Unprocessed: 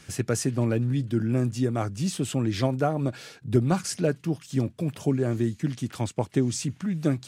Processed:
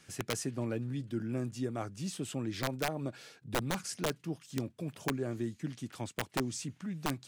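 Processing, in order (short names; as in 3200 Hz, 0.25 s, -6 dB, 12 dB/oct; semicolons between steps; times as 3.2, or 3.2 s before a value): low shelf 100 Hz -10.5 dB; wrapped overs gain 15 dB; gain -8.5 dB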